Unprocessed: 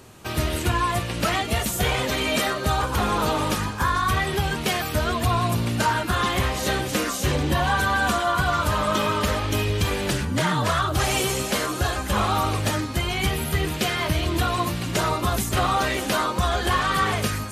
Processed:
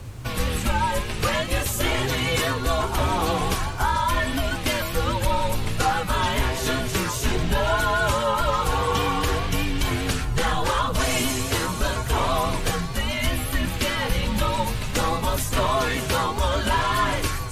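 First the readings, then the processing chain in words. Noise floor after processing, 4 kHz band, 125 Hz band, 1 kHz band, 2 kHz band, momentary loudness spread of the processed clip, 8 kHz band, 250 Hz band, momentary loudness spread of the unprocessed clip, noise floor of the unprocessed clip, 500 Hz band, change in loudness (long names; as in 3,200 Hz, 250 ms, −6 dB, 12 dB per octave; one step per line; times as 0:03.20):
−29 dBFS, −0.5 dB, −1.0 dB, −0.5 dB, −1.0 dB, 3 LU, 0.0 dB, −1.5 dB, 3 LU, −30 dBFS, +0.5 dB, −0.5 dB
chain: pitch vibrato 4.9 Hz 39 cents
background noise brown −35 dBFS
frequency shifter −130 Hz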